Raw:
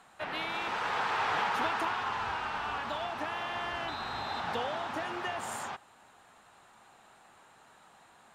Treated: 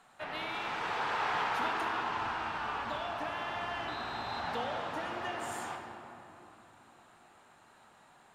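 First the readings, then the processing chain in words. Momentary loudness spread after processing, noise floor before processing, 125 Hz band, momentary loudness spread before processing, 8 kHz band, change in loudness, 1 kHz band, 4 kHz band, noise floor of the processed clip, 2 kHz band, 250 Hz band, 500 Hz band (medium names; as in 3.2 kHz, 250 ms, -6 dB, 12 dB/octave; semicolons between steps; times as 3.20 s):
12 LU, -60 dBFS, -1.0 dB, 7 LU, -3.0 dB, -2.0 dB, -1.5 dB, -2.5 dB, -61 dBFS, -2.0 dB, -1.0 dB, -1.5 dB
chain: simulated room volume 160 m³, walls hard, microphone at 0.36 m; trim -4 dB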